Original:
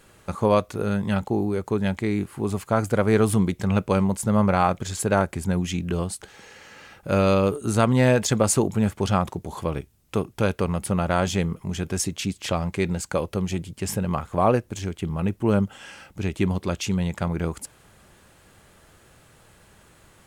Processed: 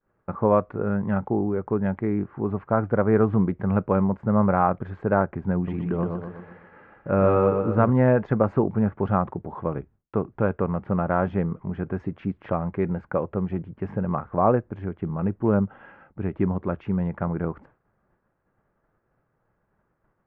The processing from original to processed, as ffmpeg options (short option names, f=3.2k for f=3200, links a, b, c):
-filter_complex "[0:a]asettb=1/sr,asplit=3[a][b][c];[a]atrim=end=5.554[d];[b]atrim=start=5.55:end=7.9,asetpts=PTS-STARTPTS,afade=t=in:d=0.004:c=qsin,afade=t=out:st=2.346:d=0.004:c=qsin,aecho=1:1:122|244|366|488|610|732:0.596|0.298|0.149|0.0745|0.0372|0.0186,atrim=end_sample=103635[e];[c]atrim=start=7.896[f];[d][e]acrossfade=d=0.004:c1=hsin:c2=qsin[g];[g][f]acrossfade=d=0.004:c1=qsin:c2=hsin,lowpass=f=1.6k:w=0.5412,lowpass=f=1.6k:w=1.3066,agate=range=-33dB:threshold=-44dB:ratio=3:detection=peak,equalizer=f=75:t=o:w=0.28:g=-14.5"